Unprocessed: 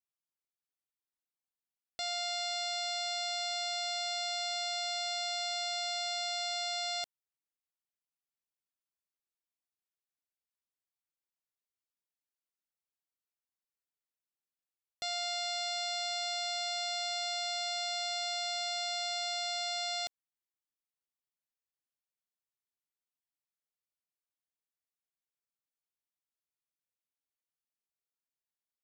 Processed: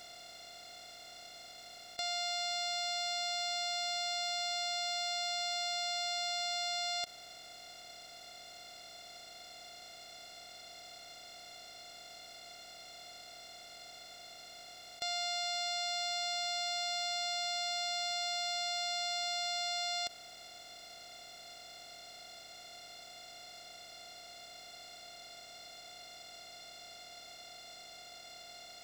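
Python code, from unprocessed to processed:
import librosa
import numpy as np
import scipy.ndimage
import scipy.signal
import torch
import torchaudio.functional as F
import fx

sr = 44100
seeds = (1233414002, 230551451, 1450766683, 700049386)

y = fx.bin_compress(x, sr, power=0.2)
y = y * librosa.db_to_amplitude(-1.0)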